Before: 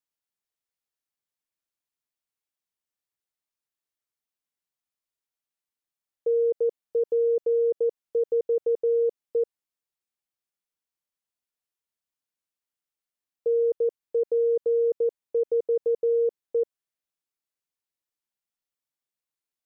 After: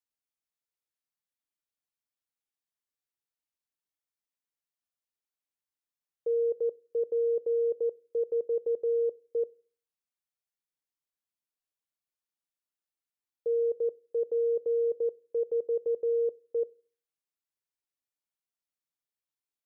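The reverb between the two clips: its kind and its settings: FDN reverb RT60 0.42 s, low-frequency decay 1.4×, high-frequency decay 0.85×, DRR 19.5 dB; trim -5.5 dB

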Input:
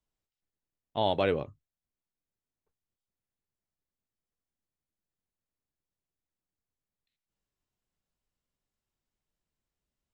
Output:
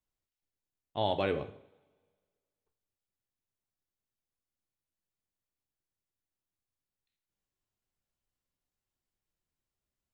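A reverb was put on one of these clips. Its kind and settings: two-slope reverb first 0.59 s, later 1.8 s, from -23 dB, DRR 8 dB; trim -3.5 dB

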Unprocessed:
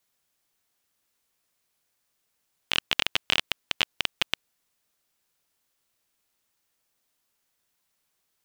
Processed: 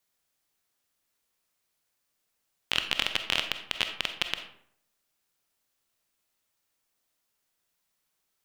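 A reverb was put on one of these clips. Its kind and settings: algorithmic reverb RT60 0.66 s, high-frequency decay 0.6×, pre-delay 5 ms, DRR 6.5 dB; trim -3 dB

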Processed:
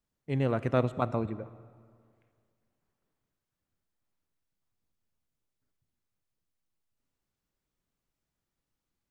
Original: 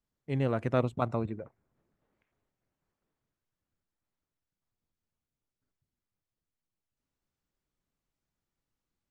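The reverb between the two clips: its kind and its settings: algorithmic reverb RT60 2 s, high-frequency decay 0.7×, pre-delay 10 ms, DRR 16 dB; trim +1 dB

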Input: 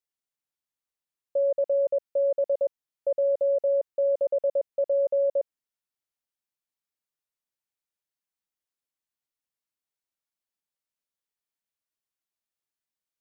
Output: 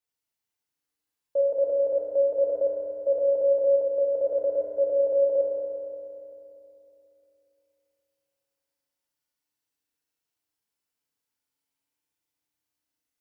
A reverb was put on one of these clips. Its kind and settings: FDN reverb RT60 2.9 s, low-frequency decay 1.3×, high-frequency decay 0.9×, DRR -6 dB; trim -1.5 dB

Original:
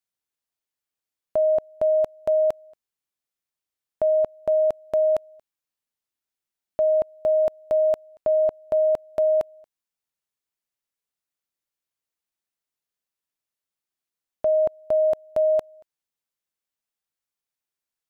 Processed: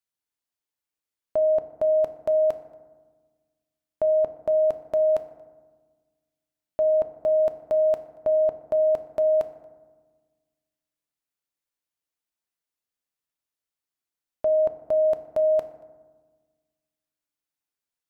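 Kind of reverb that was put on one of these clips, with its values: FDN reverb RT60 1.4 s, low-frequency decay 1.4×, high-frequency decay 0.4×, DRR 9 dB; trim -2 dB

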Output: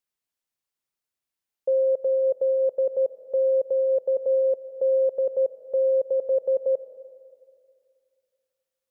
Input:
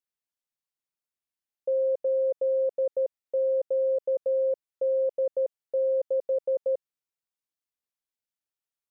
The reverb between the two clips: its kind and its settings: algorithmic reverb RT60 2.3 s, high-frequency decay 0.9×, pre-delay 105 ms, DRR 13.5 dB; trim +4 dB

